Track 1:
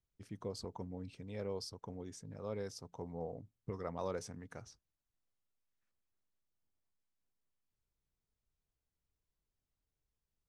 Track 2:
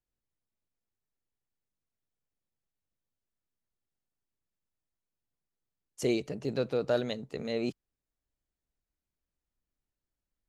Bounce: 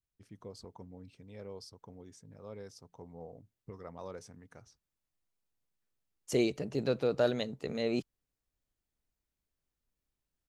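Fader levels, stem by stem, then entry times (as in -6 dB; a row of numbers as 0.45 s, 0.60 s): -5.0 dB, 0.0 dB; 0.00 s, 0.30 s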